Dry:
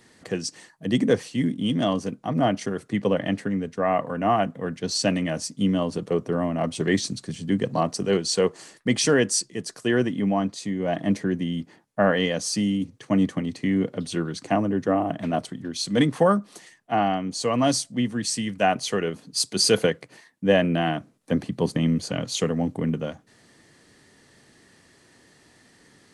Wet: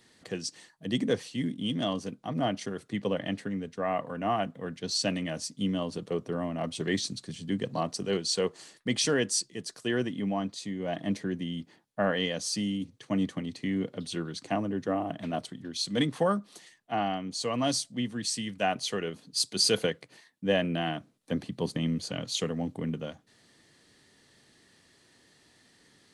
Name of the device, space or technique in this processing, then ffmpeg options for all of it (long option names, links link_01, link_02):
presence and air boost: -af "equalizer=frequency=3700:width_type=o:width=0.92:gain=6,highshelf=frequency=10000:gain=4,volume=-7.5dB"